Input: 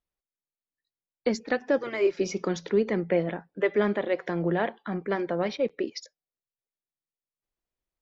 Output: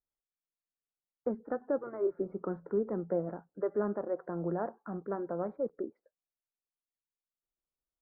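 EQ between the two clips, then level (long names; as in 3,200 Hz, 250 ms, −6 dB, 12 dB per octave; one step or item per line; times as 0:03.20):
elliptic low-pass filter 1,400 Hz, stop band 50 dB
−7.0 dB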